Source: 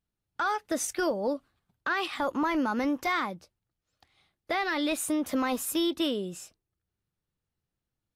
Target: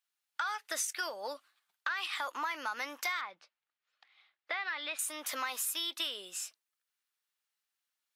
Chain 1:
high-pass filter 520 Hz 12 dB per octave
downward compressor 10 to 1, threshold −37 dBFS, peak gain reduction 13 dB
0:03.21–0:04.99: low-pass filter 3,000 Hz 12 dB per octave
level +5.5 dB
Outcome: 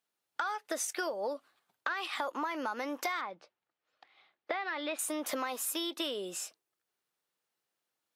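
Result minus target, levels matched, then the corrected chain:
500 Hz band +8.0 dB
high-pass filter 1,400 Hz 12 dB per octave
downward compressor 10 to 1, threshold −37 dBFS, peak gain reduction 10.5 dB
0:03.21–0:04.99: low-pass filter 3,000 Hz 12 dB per octave
level +5.5 dB

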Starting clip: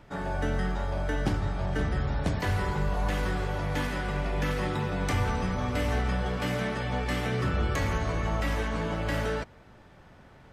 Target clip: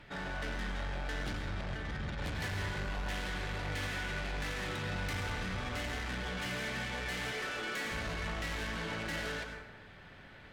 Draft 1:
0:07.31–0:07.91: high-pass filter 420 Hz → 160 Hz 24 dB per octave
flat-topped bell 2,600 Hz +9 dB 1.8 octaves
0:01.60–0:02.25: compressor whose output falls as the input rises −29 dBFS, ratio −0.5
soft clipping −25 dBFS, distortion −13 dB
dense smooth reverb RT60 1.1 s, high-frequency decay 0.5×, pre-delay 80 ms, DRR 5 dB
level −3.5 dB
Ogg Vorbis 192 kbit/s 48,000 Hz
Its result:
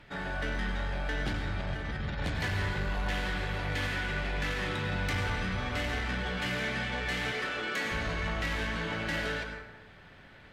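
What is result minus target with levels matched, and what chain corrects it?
soft clipping: distortion −6 dB
0:07.31–0:07.91: high-pass filter 420 Hz → 160 Hz 24 dB per octave
flat-topped bell 2,600 Hz +9 dB 1.8 octaves
0:01.60–0:02.25: compressor whose output falls as the input rises −29 dBFS, ratio −0.5
soft clipping −33 dBFS, distortion −7 dB
dense smooth reverb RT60 1.1 s, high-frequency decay 0.5×, pre-delay 80 ms, DRR 5 dB
level −3.5 dB
Ogg Vorbis 192 kbit/s 48,000 Hz

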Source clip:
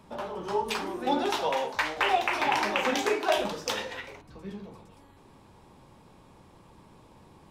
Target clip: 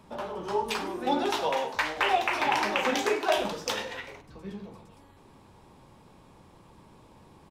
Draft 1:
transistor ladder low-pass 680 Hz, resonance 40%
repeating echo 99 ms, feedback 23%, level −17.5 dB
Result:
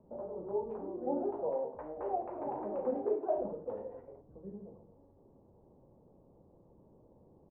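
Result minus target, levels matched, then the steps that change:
500 Hz band +5.0 dB
remove: transistor ladder low-pass 680 Hz, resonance 40%

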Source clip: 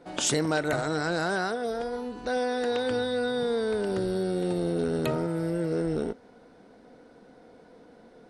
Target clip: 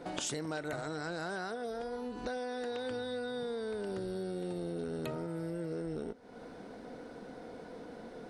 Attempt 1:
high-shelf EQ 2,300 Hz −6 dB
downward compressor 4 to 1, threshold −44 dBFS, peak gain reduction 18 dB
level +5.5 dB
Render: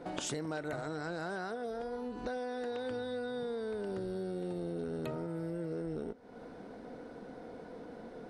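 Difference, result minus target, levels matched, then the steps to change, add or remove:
4,000 Hz band −3.0 dB
remove: high-shelf EQ 2,300 Hz −6 dB

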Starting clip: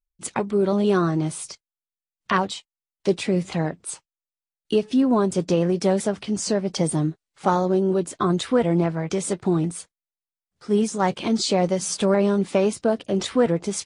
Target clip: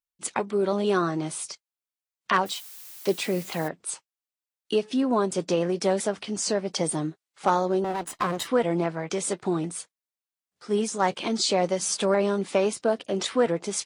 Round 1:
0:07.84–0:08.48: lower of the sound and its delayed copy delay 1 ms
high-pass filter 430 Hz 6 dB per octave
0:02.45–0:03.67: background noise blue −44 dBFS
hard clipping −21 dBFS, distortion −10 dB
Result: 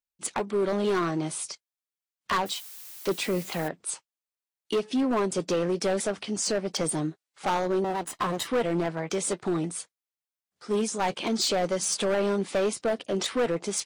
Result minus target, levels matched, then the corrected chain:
hard clipping: distortion +27 dB
0:07.84–0:08.48: lower of the sound and its delayed copy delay 1 ms
high-pass filter 430 Hz 6 dB per octave
0:02.45–0:03.67: background noise blue −44 dBFS
hard clipping −9.5 dBFS, distortion −38 dB

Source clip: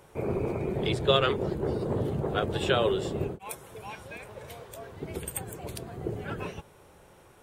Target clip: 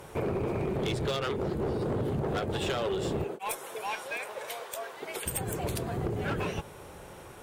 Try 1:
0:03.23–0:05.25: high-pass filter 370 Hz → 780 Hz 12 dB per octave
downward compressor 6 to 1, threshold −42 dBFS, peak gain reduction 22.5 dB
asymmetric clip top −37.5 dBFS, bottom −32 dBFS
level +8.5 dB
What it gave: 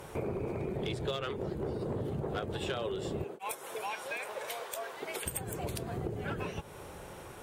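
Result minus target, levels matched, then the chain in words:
downward compressor: peak gain reduction +6.5 dB
0:03.23–0:05.25: high-pass filter 370 Hz → 780 Hz 12 dB per octave
downward compressor 6 to 1, threshold −34 dBFS, peak gain reduction 15.5 dB
asymmetric clip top −37.5 dBFS, bottom −32 dBFS
level +8.5 dB

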